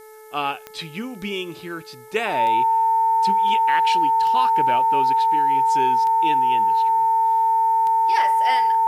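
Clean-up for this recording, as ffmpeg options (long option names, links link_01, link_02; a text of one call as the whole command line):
ffmpeg -i in.wav -af "adeclick=threshold=4,bandreject=frequency=433.4:width_type=h:width=4,bandreject=frequency=866.8:width_type=h:width=4,bandreject=frequency=1300.2:width_type=h:width=4,bandreject=frequency=1733.6:width_type=h:width=4,bandreject=frequency=2167:width_type=h:width=4,bandreject=frequency=900:width=30,agate=range=-21dB:threshold=-31dB" out.wav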